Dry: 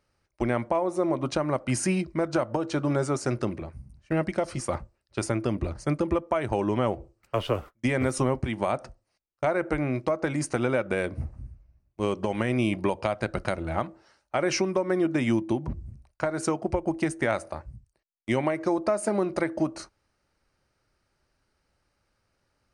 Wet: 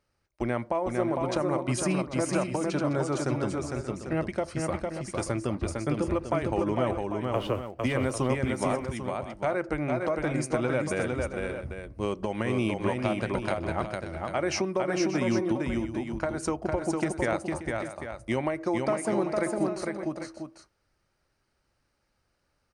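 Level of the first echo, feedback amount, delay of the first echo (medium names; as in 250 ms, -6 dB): -3.5 dB, no regular repeats, 455 ms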